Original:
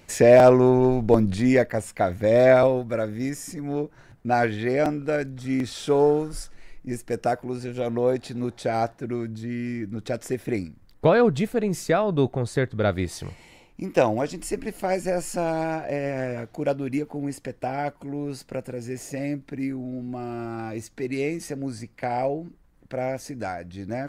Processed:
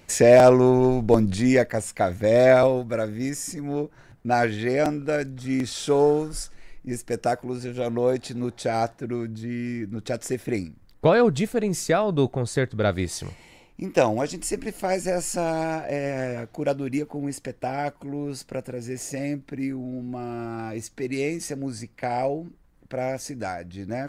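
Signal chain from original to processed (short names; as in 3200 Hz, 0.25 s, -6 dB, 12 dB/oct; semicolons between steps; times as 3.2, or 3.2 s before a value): dynamic EQ 7300 Hz, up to +6 dB, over -49 dBFS, Q 0.73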